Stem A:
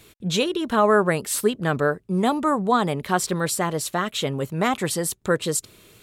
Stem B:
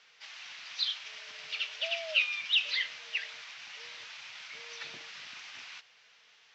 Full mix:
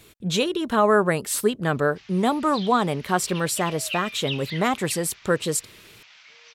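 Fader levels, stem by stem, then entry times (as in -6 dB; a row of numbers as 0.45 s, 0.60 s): -0.5 dB, -4.5 dB; 0.00 s, 1.75 s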